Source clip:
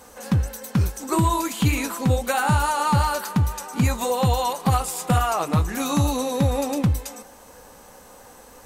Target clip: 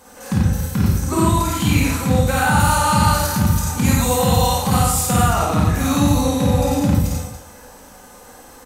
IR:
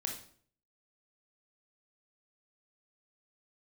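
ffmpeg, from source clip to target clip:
-filter_complex "[0:a]asettb=1/sr,asplit=3[link_01][link_02][link_03];[link_01]atrim=end=2.514[link_04];[link_02]atrim=start=2.51:end=5.17,asetpts=PTS-STARTPTS,afade=type=in:duration=0.004:curve=qsin,afade=type=out:start_time=2.656:duration=0.004:curve=qsin,highshelf=frequency=4000:gain=6.5[link_05];[link_03]atrim=start=5.166[link_06];[link_04][link_05]acrossfade=duration=0.004:curve1=hsin:curve2=qsin[link_07];[link_07][link_06]acrossfade=duration=0.004:curve1=qsin:curve2=hsin,aecho=1:1:52.48|90.38|282.8:0.794|0.794|0.282[link_08];[1:a]atrim=start_sample=2205[link_09];[link_08][link_09]afir=irnorm=-1:irlink=0"

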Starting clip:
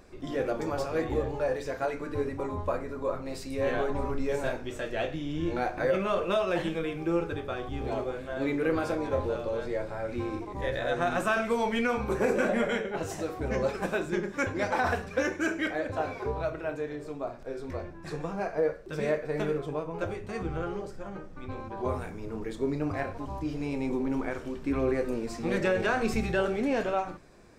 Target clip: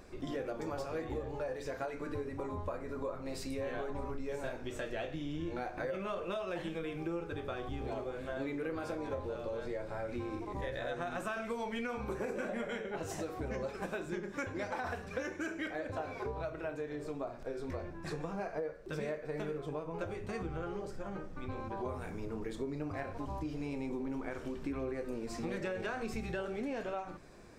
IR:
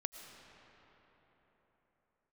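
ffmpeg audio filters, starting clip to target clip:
-af "acompressor=threshold=-36dB:ratio=5"

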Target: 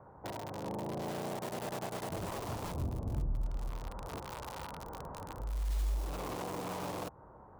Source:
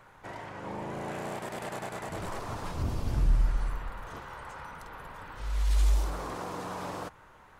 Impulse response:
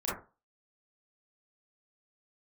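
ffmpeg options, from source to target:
-filter_complex "[0:a]acrossover=split=610|970[link_01][link_02][link_03];[link_03]acrusher=bits=4:dc=4:mix=0:aa=0.000001[link_04];[link_01][link_02][link_04]amix=inputs=3:normalize=0,highpass=45,acompressor=threshold=-44dB:ratio=2,volume=4.5dB"

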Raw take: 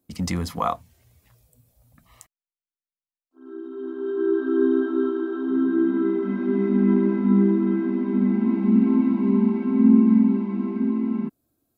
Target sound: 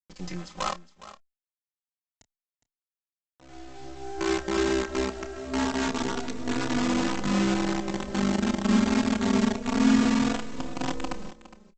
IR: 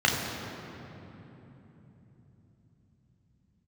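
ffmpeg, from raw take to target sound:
-filter_complex "[0:a]highpass=frequency=170:width=0.5412,highpass=frequency=170:width=1.3066,aresample=16000,acrusher=bits=4:dc=4:mix=0:aa=0.000001,aresample=44100,asplit=2[link_01][link_02];[link_02]adelay=29,volume=-13dB[link_03];[link_01][link_03]amix=inputs=2:normalize=0,aecho=1:1:412:0.158,asplit=2[link_04][link_05];[link_05]adelay=3.5,afreqshift=0.27[link_06];[link_04][link_06]amix=inputs=2:normalize=1,volume=-2.5dB"

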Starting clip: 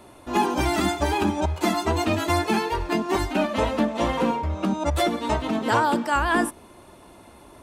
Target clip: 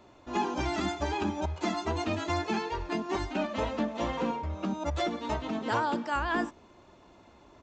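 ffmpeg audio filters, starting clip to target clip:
ffmpeg -i in.wav -af "aresample=16000,aresample=44100,volume=-8dB" out.wav

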